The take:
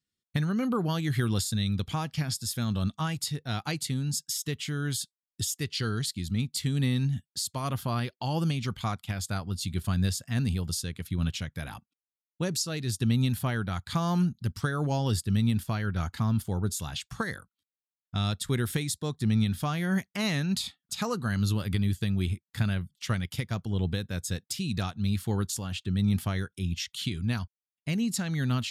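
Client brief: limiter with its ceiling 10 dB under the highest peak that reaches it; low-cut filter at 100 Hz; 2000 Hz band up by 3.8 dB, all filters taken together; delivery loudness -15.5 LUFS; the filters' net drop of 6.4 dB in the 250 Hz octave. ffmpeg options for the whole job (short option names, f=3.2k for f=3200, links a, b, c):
-af "highpass=100,equalizer=f=250:t=o:g=-9,equalizer=f=2k:t=o:g=5,volume=18.5dB,alimiter=limit=-4.5dB:level=0:latency=1"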